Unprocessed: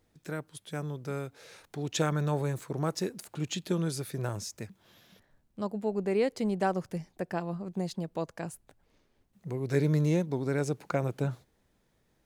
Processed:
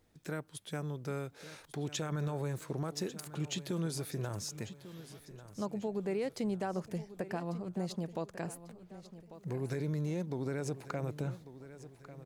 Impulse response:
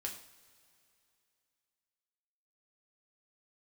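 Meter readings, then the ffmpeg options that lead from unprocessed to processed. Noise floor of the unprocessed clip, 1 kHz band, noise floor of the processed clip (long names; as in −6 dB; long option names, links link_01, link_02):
−72 dBFS, −7.0 dB, −60 dBFS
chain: -filter_complex "[0:a]alimiter=limit=-23dB:level=0:latency=1,acompressor=threshold=-38dB:ratio=1.5,asplit=2[link_01][link_02];[link_02]aecho=0:1:1145|2290|3435|4580:0.188|0.0848|0.0381|0.0172[link_03];[link_01][link_03]amix=inputs=2:normalize=0"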